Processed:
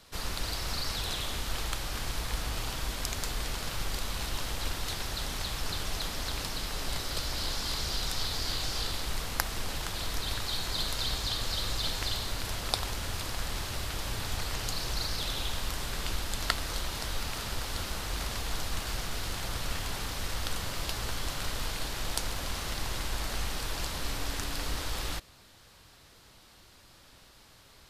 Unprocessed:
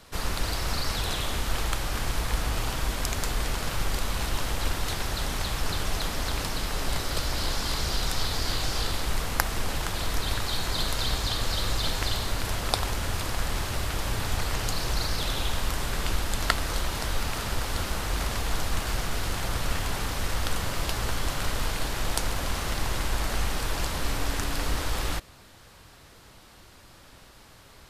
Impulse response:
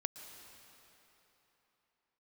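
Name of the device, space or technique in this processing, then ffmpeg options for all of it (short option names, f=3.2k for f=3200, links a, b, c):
presence and air boost: -af "equalizer=f=4.2k:t=o:w=1.4:g=4.5,highshelf=f=9.9k:g=4,volume=-6.5dB"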